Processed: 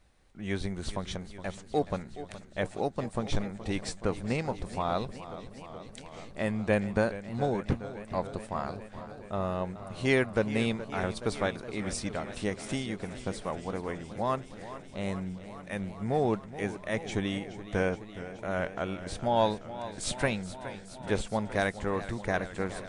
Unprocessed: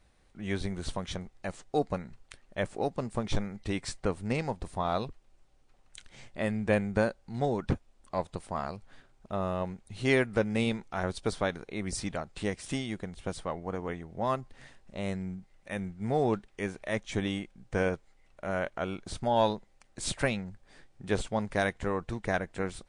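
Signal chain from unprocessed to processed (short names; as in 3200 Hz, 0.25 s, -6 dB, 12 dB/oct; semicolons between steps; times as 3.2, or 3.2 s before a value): warbling echo 0.421 s, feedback 77%, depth 88 cents, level -14 dB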